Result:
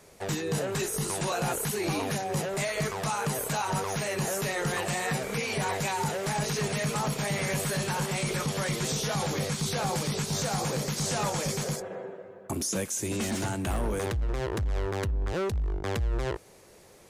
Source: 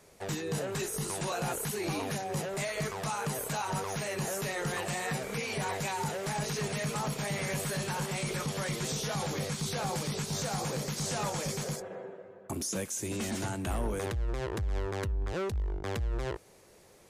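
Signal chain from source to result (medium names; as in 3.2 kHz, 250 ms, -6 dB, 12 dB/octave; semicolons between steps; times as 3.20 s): 13.26–15.73 s: overload inside the chain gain 28.5 dB; trim +4 dB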